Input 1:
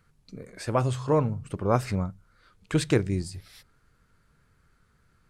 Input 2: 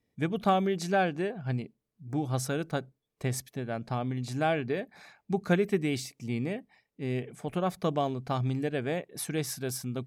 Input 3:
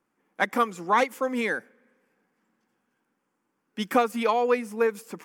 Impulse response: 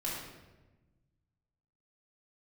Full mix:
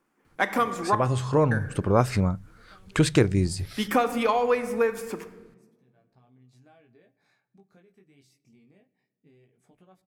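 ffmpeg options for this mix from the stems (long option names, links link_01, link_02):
-filter_complex "[0:a]dynaudnorm=framelen=230:gausssize=9:maxgain=14dB,adelay=250,volume=1dB[link_01];[1:a]acompressor=threshold=-40dB:ratio=4,flanger=delay=15.5:depth=6.4:speed=0.25,adelay=2250,volume=-14.5dB,asplit=2[link_02][link_03];[link_03]volume=-20dB[link_04];[2:a]volume=2dB,asplit=3[link_05][link_06][link_07];[link_05]atrim=end=0.95,asetpts=PTS-STARTPTS,afade=type=out:start_time=0.946:duration=0.004:curve=hsin[link_08];[link_06]atrim=start=0.95:end=1.51,asetpts=PTS-STARTPTS,volume=0[link_09];[link_07]atrim=start=1.51,asetpts=PTS-STARTPTS,afade=type=in:duration=0.004:curve=hsin[link_10];[link_08][link_09][link_10]concat=n=3:v=0:a=1,asplit=3[link_11][link_12][link_13];[link_12]volume=-11.5dB[link_14];[link_13]apad=whole_len=543142[link_15];[link_02][link_15]sidechaincompress=threshold=-37dB:ratio=8:attack=12:release=1190[link_16];[3:a]atrim=start_sample=2205[link_17];[link_04][link_14]amix=inputs=2:normalize=0[link_18];[link_18][link_17]afir=irnorm=-1:irlink=0[link_19];[link_01][link_16][link_11][link_19]amix=inputs=4:normalize=0,acompressor=threshold=-25dB:ratio=1.5"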